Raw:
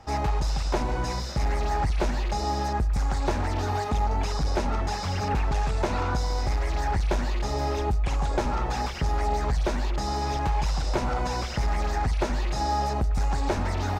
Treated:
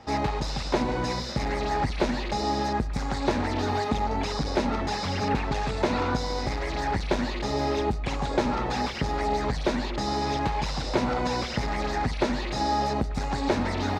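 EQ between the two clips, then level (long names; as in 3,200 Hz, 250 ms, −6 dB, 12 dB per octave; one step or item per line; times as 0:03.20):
octave-band graphic EQ 125/250/500/1,000/2,000/4,000/8,000 Hz +6/+12/+8/+5/+8/+11/+3 dB
−8.0 dB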